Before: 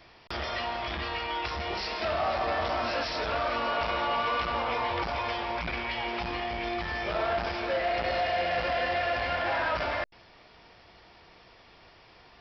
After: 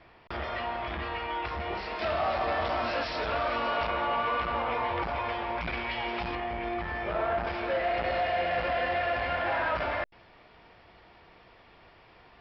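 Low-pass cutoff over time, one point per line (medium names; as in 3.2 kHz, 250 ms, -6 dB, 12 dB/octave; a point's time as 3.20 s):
2.4 kHz
from 1.99 s 4.1 kHz
from 3.87 s 2.6 kHz
from 5.61 s 4 kHz
from 6.35 s 2.1 kHz
from 7.47 s 3 kHz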